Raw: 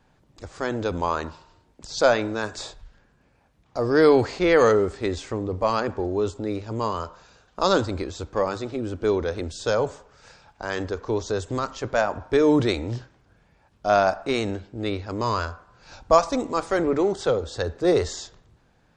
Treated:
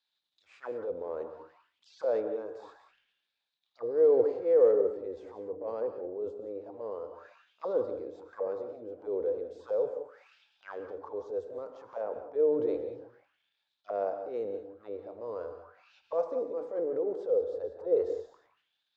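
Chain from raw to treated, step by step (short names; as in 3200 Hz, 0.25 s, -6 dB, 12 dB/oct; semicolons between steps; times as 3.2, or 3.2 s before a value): transient shaper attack -11 dB, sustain +6 dB; auto-wah 490–4000 Hz, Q 7.4, down, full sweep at -26 dBFS; non-linear reverb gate 0.21 s rising, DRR 8 dB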